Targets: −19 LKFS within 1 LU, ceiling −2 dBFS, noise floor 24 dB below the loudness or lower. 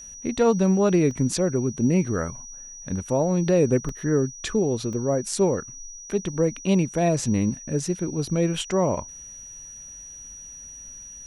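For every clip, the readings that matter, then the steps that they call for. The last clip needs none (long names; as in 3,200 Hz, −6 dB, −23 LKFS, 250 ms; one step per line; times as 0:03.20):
number of dropouts 3; longest dropout 1.9 ms; interfering tone 5,800 Hz; level of the tone −39 dBFS; integrated loudness −23.5 LKFS; sample peak −9.5 dBFS; target loudness −19.0 LKFS
→ repair the gap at 0:01.11/0:03.89/0:04.93, 1.9 ms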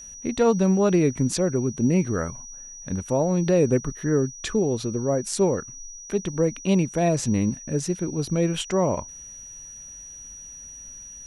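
number of dropouts 0; interfering tone 5,800 Hz; level of the tone −39 dBFS
→ notch filter 5,800 Hz, Q 30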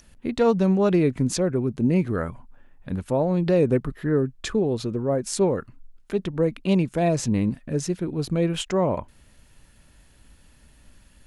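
interfering tone none found; integrated loudness −24.0 LKFS; sample peak −9.5 dBFS; target loudness −19.0 LKFS
→ level +5 dB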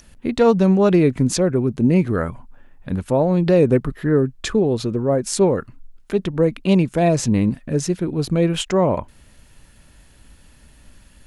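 integrated loudness −19.0 LKFS; sample peak −4.5 dBFS; background noise floor −50 dBFS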